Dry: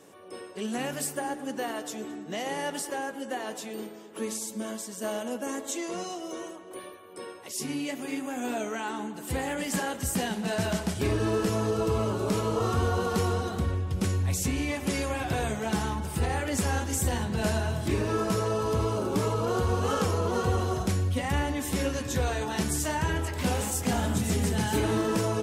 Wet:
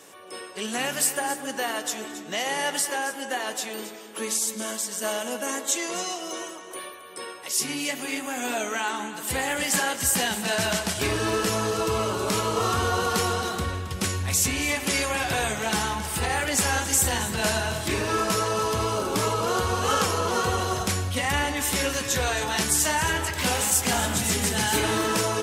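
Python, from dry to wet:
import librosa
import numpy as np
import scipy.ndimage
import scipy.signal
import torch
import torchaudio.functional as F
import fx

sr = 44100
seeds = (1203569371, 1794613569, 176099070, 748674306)

y = fx.tilt_shelf(x, sr, db=-6.5, hz=690.0)
y = y + 10.0 ** (-13.0 / 20.0) * np.pad(y, (int(271 * sr / 1000.0), 0))[:len(y)]
y = y * librosa.db_to_amplitude(3.5)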